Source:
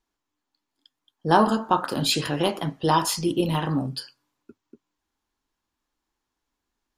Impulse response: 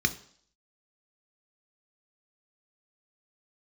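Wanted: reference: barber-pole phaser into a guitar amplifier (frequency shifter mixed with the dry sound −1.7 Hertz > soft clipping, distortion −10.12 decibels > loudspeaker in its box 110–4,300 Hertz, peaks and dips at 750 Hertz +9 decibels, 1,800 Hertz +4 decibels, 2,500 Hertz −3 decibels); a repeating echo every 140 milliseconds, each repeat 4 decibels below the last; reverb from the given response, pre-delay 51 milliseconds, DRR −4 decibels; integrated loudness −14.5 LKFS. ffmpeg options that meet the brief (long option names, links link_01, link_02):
-filter_complex "[0:a]aecho=1:1:140|280|420|560|700|840|980|1120|1260:0.631|0.398|0.25|0.158|0.0994|0.0626|0.0394|0.0249|0.0157,asplit=2[link_01][link_02];[1:a]atrim=start_sample=2205,adelay=51[link_03];[link_02][link_03]afir=irnorm=-1:irlink=0,volume=-5.5dB[link_04];[link_01][link_04]amix=inputs=2:normalize=0,asplit=2[link_05][link_06];[link_06]afreqshift=-1.7[link_07];[link_05][link_07]amix=inputs=2:normalize=1,asoftclip=threshold=-16dB,highpass=110,equalizer=frequency=750:width_type=q:width=4:gain=9,equalizer=frequency=1800:width_type=q:width=4:gain=4,equalizer=frequency=2500:width_type=q:width=4:gain=-3,lowpass=frequency=4300:width=0.5412,lowpass=frequency=4300:width=1.3066,volume=7dB"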